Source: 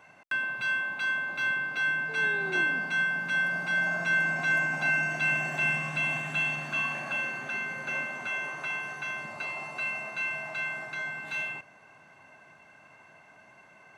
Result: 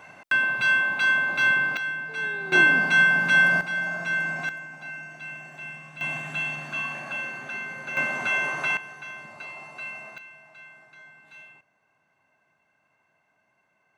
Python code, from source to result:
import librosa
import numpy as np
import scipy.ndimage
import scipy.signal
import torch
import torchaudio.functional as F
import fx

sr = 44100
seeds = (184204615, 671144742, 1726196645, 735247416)

y = fx.gain(x, sr, db=fx.steps((0.0, 8.0), (1.77, -2.0), (2.52, 9.5), (3.61, -0.5), (4.49, -11.5), (6.01, -0.5), (7.97, 8.0), (8.77, -4.0), (10.18, -14.5)))